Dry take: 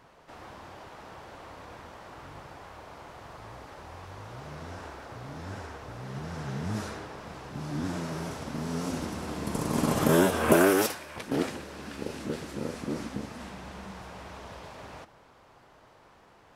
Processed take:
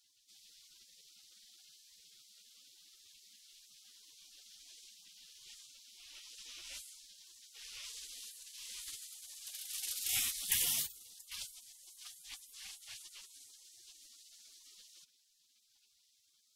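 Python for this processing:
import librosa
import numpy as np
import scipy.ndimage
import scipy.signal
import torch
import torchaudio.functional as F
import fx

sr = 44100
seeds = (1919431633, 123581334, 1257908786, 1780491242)

y = fx.band_shelf(x, sr, hz=1100.0, db=8.0, octaves=2.7)
y = fx.spec_gate(y, sr, threshold_db=-30, keep='weak')
y = y * 10.0 ** (2.5 / 20.0)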